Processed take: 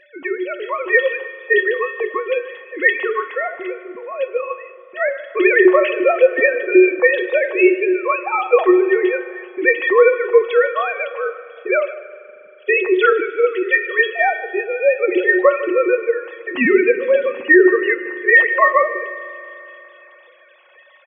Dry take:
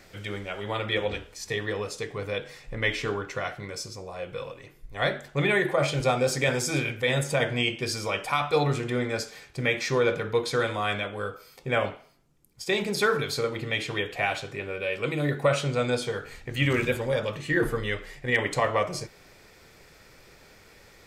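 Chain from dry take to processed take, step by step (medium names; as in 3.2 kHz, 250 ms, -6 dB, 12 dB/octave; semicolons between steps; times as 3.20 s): formants replaced by sine waves; feedback comb 370 Hz, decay 0.24 s, harmonics odd, mix 90%; feedback delay 153 ms, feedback 41%, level -18.5 dB; on a send at -15 dB: reverberation RT60 3.3 s, pre-delay 39 ms; on the sum: loudness maximiser +28.5 dB; trim -1 dB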